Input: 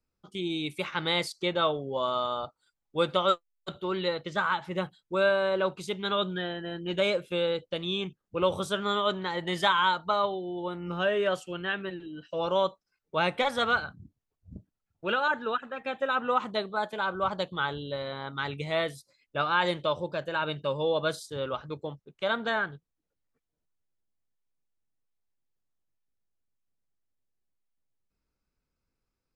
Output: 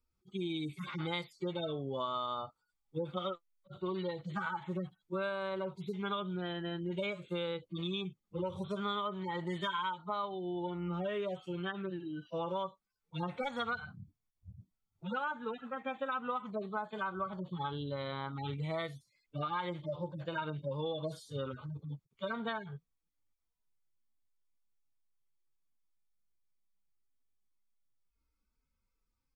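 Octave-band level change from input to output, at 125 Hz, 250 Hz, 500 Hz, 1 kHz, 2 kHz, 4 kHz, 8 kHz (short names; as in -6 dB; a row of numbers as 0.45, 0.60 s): -1.5 dB, -4.0 dB, -10.0 dB, -9.0 dB, -12.0 dB, -11.5 dB, under -15 dB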